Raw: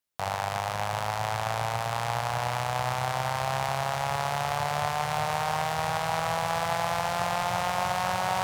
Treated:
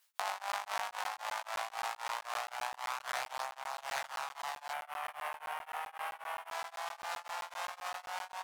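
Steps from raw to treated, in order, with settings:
Chebyshev high-pass filter 1,000 Hz, order 2
double-tracking delay 15 ms −3 dB
single-tap delay 756 ms −6.5 dB
compressor whose output falls as the input rises −41 dBFS, ratio −1
0:04.73–0:06.51: flat-topped bell 5,400 Hz −12 dB 1.3 octaves
regular buffer underruns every 0.13 s, samples 512, zero, from 0:00.52
tremolo along a rectified sine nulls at 3.8 Hz
level +4 dB

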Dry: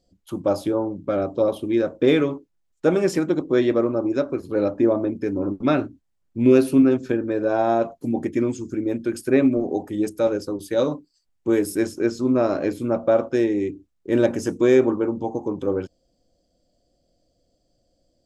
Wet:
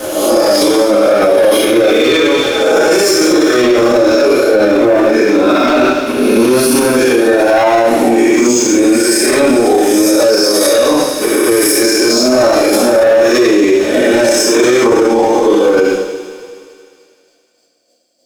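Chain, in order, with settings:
peak hold with a rise ahead of every peak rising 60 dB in 0.95 s
high-pass filter 410 Hz 12 dB per octave
high-shelf EQ 3,600 Hz +9.5 dB
harmonic and percussive parts rebalanced percussive −7 dB
dynamic equaliser 5,400 Hz, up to +7 dB, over −51 dBFS, Q 3.4
leveller curve on the samples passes 3
square-wave tremolo 3.3 Hz, depth 60%, duty 15%
delay with a high-pass on its return 77 ms, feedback 84%, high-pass 2,600 Hz, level −16 dB
coupled-rooms reverb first 0.58 s, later 2.1 s, DRR −8 dB
boost into a limiter +12.5 dB
level −1 dB

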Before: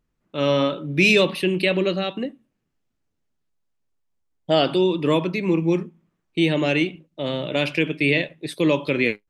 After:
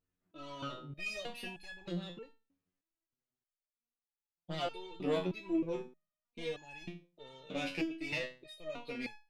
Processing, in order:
one-sided soft clipper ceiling −21 dBFS
step-sequenced resonator 3.2 Hz 92–850 Hz
level −2 dB

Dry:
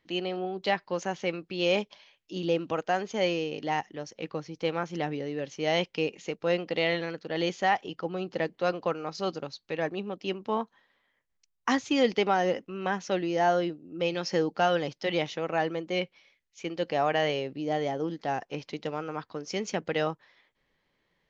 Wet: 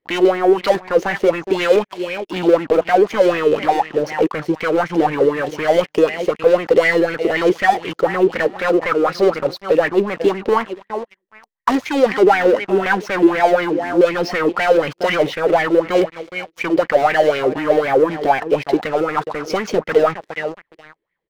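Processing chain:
high-frequency loss of the air 190 metres
repeating echo 415 ms, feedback 23%, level −19.5 dB
in parallel at +1 dB: downward compressor 6 to 1, threshold −36 dBFS, peak gain reduction 15.5 dB
on the sum: high-shelf EQ 5,200 Hz +5.5 dB
leveller curve on the samples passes 5
auto-filter bell 4 Hz 350–2,200 Hz +18 dB
level −8.5 dB

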